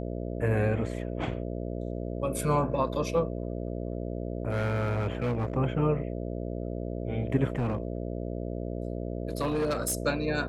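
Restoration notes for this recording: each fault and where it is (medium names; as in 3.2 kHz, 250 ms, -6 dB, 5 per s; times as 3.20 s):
buzz 60 Hz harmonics 11 -34 dBFS
4.50–5.53 s: clipped -25 dBFS
7.55–9.98 s: clipped -24 dBFS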